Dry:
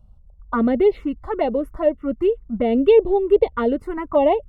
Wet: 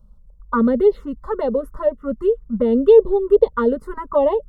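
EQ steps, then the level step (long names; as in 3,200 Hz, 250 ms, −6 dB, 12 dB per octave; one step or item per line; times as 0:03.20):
phaser with its sweep stopped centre 480 Hz, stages 8
+3.5 dB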